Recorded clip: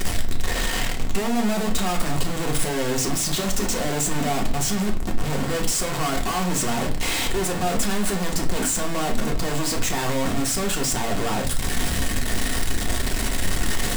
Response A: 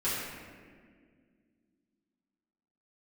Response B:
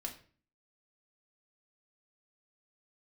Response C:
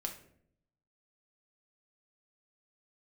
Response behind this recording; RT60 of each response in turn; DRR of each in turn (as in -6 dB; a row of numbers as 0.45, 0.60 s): B; 1.9, 0.40, 0.65 s; -12.0, 1.0, 2.5 dB